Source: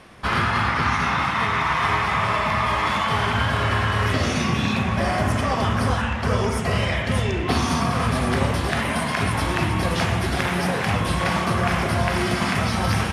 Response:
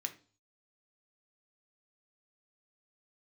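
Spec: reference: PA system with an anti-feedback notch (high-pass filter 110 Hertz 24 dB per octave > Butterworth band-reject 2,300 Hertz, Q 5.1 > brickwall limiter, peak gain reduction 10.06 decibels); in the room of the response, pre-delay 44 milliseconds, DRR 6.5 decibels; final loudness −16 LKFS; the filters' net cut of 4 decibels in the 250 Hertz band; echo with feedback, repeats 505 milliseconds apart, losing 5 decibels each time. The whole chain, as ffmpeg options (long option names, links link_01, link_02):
-filter_complex "[0:a]equalizer=frequency=250:width_type=o:gain=-5.5,aecho=1:1:505|1010|1515|2020|2525|3030|3535:0.562|0.315|0.176|0.0988|0.0553|0.031|0.0173,asplit=2[link_01][link_02];[1:a]atrim=start_sample=2205,adelay=44[link_03];[link_02][link_03]afir=irnorm=-1:irlink=0,volume=-6dB[link_04];[link_01][link_04]amix=inputs=2:normalize=0,highpass=frequency=110:width=0.5412,highpass=frequency=110:width=1.3066,asuperstop=centerf=2300:order=8:qfactor=5.1,volume=10.5dB,alimiter=limit=-7.5dB:level=0:latency=1"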